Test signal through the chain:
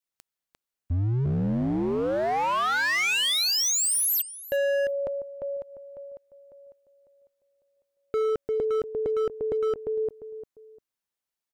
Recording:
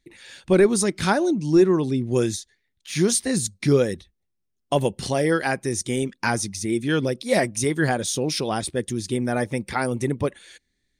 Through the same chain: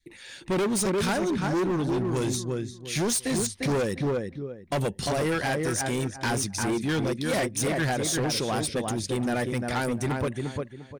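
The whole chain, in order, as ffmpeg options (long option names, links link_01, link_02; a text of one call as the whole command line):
ffmpeg -i in.wav -filter_complex "[0:a]adynamicequalizer=threshold=0.0224:dfrequency=370:dqfactor=0.7:tfrequency=370:tqfactor=0.7:attack=5:release=100:ratio=0.375:range=2.5:mode=cutabove:tftype=bell,asplit=2[link_01][link_02];[link_02]adelay=349,lowpass=frequency=1700:poles=1,volume=-5dB,asplit=2[link_03][link_04];[link_04]adelay=349,lowpass=frequency=1700:poles=1,volume=0.26,asplit=2[link_05][link_06];[link_06]adelay=349,lowpass=frequency=1700:poles=1,volume=0.26[link_07];[link_01][link_03][link_05][link_07]amix=inputs=4:normalize=0,asoftclip=type=hard:threshold=-23dB" out.wav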